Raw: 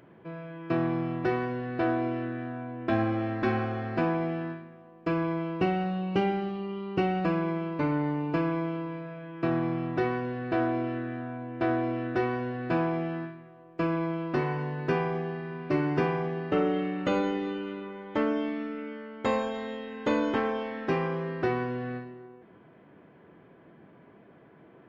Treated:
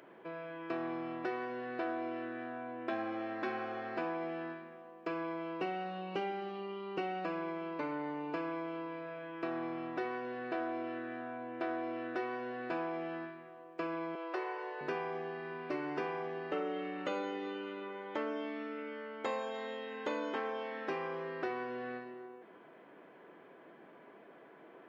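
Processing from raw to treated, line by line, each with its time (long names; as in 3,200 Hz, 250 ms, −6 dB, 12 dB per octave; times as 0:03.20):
0:14.15–0:14.81: elliptic high-pass filter 350 Hz
whole clip: high-pass filter 370 Hz 12 dB per octave; downward compressor 2 to 1, threshold −43 dBFS; level +1.5 dB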